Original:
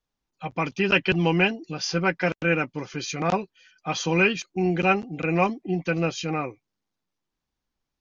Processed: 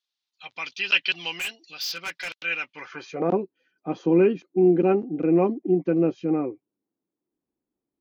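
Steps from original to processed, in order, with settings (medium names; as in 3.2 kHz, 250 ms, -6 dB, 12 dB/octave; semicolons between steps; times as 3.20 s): band-pass sweep 3.9 kHz -> 330 Hz, 2.61–3.31 s; 1.34–2.43 s: hard clipper -36 dBFS, distortion -18 dB; trim +9 dB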